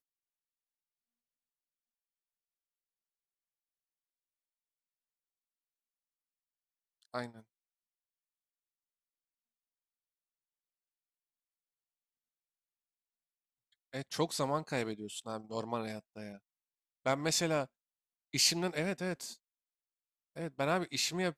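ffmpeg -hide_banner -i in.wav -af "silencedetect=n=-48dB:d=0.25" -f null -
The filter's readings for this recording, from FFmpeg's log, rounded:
silence_start: 0.00
silence_end: 7.14 | silence_duration: 7.14
silence_start: 7.40
silence_end: 13.93 | silence_duration: 6.52
silence_start: 16.36
silence_end: 17.06 | silence_duration: 0.69
silence_start: 17.66
silence_end: 18.34 | silence_duration: 0.68
silence_start: 19.34
silence_end: 20.36 | silence_duration: 1.02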